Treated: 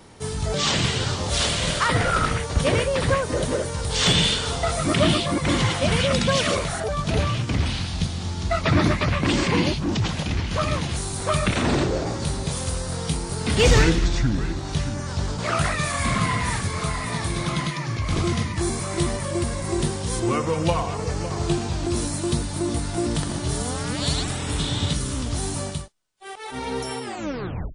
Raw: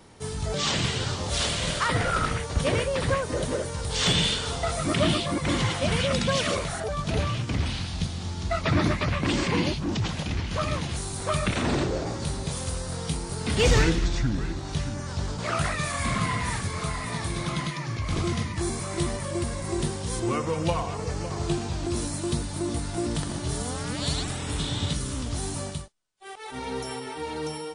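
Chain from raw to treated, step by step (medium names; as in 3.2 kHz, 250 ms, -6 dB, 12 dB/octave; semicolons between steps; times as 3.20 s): tape stop on the ending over 0.72 s; trim +4 dB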